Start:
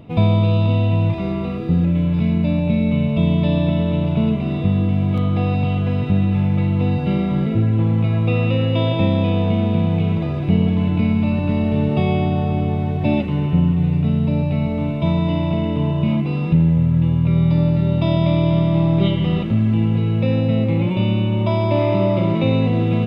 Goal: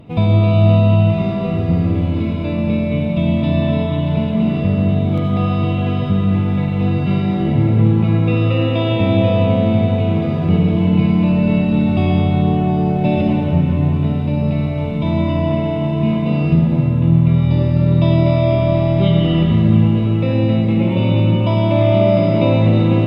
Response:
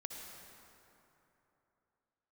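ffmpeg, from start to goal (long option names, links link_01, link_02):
-filter_complex "[1:a]atrim=start_sample=2205,asetrate=37926,aresample=44100[link_01];[0:a][link_01]afir=irnorm=-1:irlink=0,volume=4.5dB"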